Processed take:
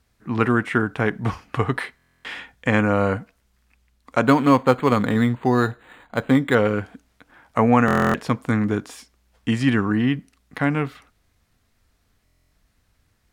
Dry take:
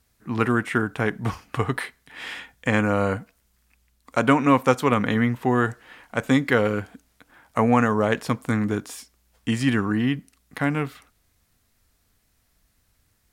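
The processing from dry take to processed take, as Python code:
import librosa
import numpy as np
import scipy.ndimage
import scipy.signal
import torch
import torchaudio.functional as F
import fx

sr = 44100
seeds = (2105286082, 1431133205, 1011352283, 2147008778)

y = fx.high_shelf(x, sr, hz=6900.0, db=-11.5)
y = fx.buffer_glitch(y, sr, at_s=(1.97, 7.86, 12.24), block=1024, repeats=11)
y = fx.resample_linear(y, sr, factor=8, at=(4.26, 6.55))
y = y * librosa.db_to_amplitude(2.5)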